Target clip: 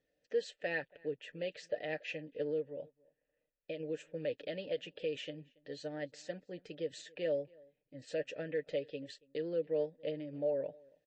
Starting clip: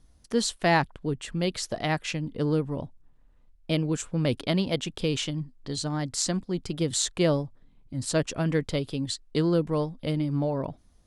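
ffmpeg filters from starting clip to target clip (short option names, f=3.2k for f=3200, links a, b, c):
-filter_complex "[0:a]aecho=1:1:6.7:0.56,asplit=3[a][b][c];[a]afade=t=out:st=2.68:d=0.02[d];[b]acompressor=threshold=-27dB:ratio=6,afade=t=in:st=2.68:d=0.02,afade=t=out:st=3.79:d=0.02[e];[c]afade=t=in:st=3.79:d=0.02[f];[d][e][f]amix=inputs=3:normalize=0,alimiter=limit=-16.5dB:level=0:latency=1:release=130,asplit=3[g][h][i];[g]bandpass=f=530:t=q:w=8,volume=0dB[j];[h]bandpass=f=1.84k:t=q:w=8,volume=-6dB[k];[i]bandpass=f=2.48k:t=q:w=8,volume=-9dB[l];[j][k][l]amix=inputs=3:normalize=0,asplit=2[m][n];[n]adelay=279.9,volume=-26dB,highshelf=f=4k:g=-6.3[o];[m][o]amix=inputs=2:normalize=0,volume=2dB" -ar 22050 -c:a libmp3lame -b:a 32k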